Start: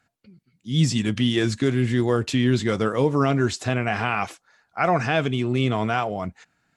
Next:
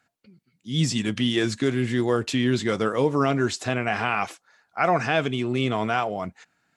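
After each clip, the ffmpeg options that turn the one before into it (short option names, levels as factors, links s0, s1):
-af "lowshelf=f=110:g=-11.5"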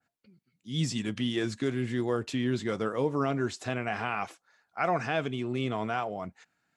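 -af "adynamicequalizer=threshold=0.0158:dfrequency=1700:dqfactor=0.7:tfrequency=1700:tqfactor=0.7:attack=5:release=100:ratio=0.375:range=2:mode=cutabove:tftype=highshelf,volume=0.473"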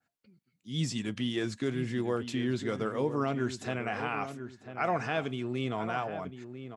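-filter_complex "[0:a]asplit=2[s0][s1];[s1]adelay=996,lowpass=f=1800:p=1,volume=0.316,asplit=2[s2][s3];[s3]adelay=996,lowpass=f=1800:p=1,volume=0.3,asplit=2[s4][s5];[s5]adelay=996,lowpass=f=1800:p=1,volume=0.3[s6];[s0][s2][s4][s6]amix=inputs=4:normalize=0,volume=0.794"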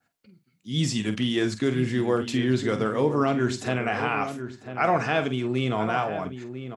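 -filter_complex "[0:a]asplit=2[s0][s1];[s1]adelay=47,volume=0.299[s2];[s0][s2]amix=inputs=2:normalize=0,volume=2.24"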